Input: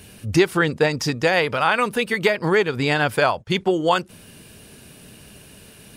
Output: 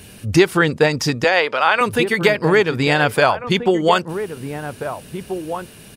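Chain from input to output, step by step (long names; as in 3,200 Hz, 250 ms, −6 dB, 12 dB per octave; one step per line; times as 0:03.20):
0:01.24–0:01.81: band-pass filter 390–6,200 Hz
slap from a distant wall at 280 metres, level −9 dB
level +3.5 dB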